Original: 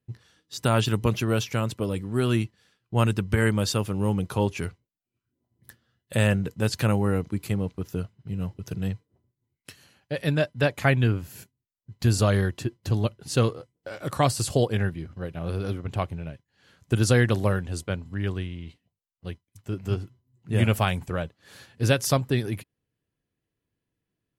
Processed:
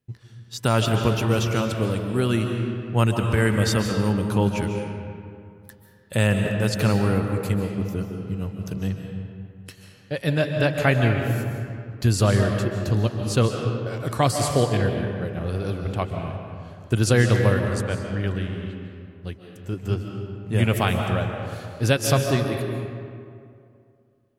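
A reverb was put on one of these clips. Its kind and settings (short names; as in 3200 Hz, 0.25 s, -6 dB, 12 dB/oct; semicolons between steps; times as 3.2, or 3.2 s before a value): digital reverb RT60 2.4 s, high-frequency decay 0.55×, pre-delay 0.105 s, DRR 3.5 dB; gain +1.5 dB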